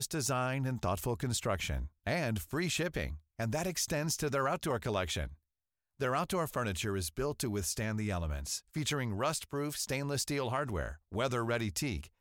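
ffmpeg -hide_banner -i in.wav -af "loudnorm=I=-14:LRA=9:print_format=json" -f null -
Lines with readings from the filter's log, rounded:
"input_i" : "-34.8",
"input_tp" : "-19.8",
"input_lra" : "1.2",
"input_thresh" : "-44.9",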